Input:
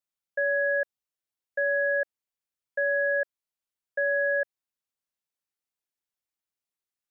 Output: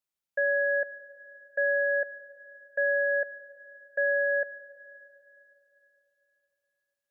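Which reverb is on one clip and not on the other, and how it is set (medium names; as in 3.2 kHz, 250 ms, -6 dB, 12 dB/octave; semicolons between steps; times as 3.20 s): algorithmic reverb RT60 3.4 s, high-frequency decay 1×, pre-delay 45 ms, DRR 15 dB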